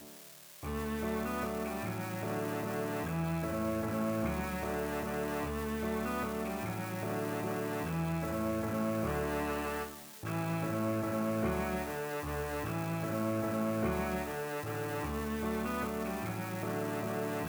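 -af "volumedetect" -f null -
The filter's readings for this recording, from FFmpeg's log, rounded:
mean_volume: -35.2 dB
max_volume: -21.3 dB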